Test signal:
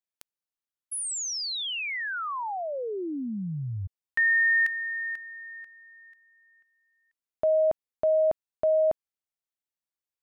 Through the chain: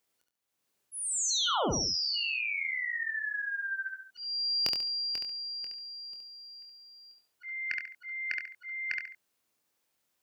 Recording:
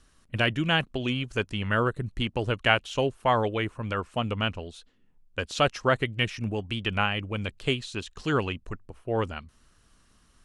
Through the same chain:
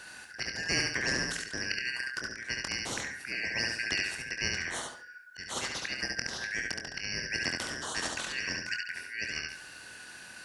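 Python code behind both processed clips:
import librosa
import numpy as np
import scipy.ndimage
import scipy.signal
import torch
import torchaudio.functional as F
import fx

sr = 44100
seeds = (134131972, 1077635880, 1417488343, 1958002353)

p1 = fx.band_shuffle(x, sr, order='3142')
p2 = scipy.signal.sosfilt(scipy.signal.butter(2, 55.0, 'highpass', fs=sr, output='sos'), p1)
p3 = fx.peak_eq(p2, sr, hz=410.0, db=4.0, octaves=2.2)
p4 = fx.auto_swell(p3, sr, attack_ms=489.0)
p5 = fx.doubler(p4, sr, ms=24.0, db=-8.0)
p6 = p5 + fx.echo_feedback(p5, sr, ms=70, feedback_pct=25, wet_db=-5, dry=0)
y = fx.spectral_comp(p6, sr, ratio=2.0)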